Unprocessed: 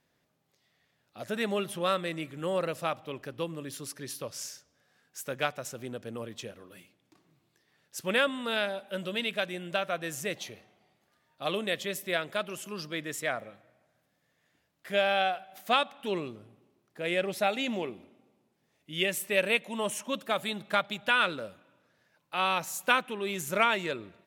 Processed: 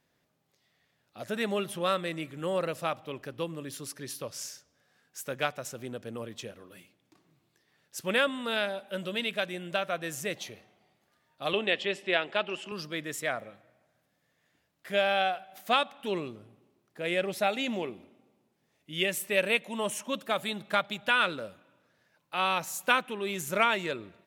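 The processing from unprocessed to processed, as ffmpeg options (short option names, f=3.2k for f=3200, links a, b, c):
-filter_complex "[0:a]asettb=1/sr,asplit=3[a][b][c];[a]atrim=end=11.534[d];[b]atrim=start=11.53:end=12.72,asetpts=PTS-STARTPTS,afade=t=in:d=0.004:c=qsin,afade=t=out:st=1.186:d=0.004:c=qsin,highpass=140,equalizer=f=140:t=q:w=4:g=-7,equalizer=f=380:t=q:w=4:g=5,equalizer=f=820:t=q:w=4:g=8,equalizer=f=1.8k:t=q:w=4:g=3,equalizer=f=2.8k:t=q:w=4:g=9,equalizer=f=6.3k:t=q:w=4:g=-9,lowpass=f=6.7k:w=0.5412,lowpass=f=6.7k:w=1.3066[e];[c]atrim=start=12.716[f];[d][e]acrossfade=d=0.004:c1=hsin:c2=qsin[g];[g][f]acrossfade=d=0.004:c1=qsin:c2=hsin"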